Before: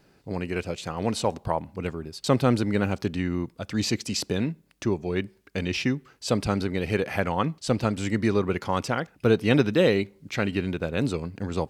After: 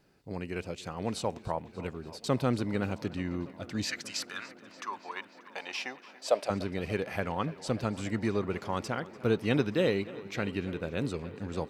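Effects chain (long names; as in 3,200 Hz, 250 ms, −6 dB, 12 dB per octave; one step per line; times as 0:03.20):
0:03.84–0:06.49: high-pass with resonance 1,600 Hz → 590 Hz, resonance Q 5.6
tape delay 291 ms, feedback 90%, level −18 dB, low-pass 5,900 Hz
level −7 dB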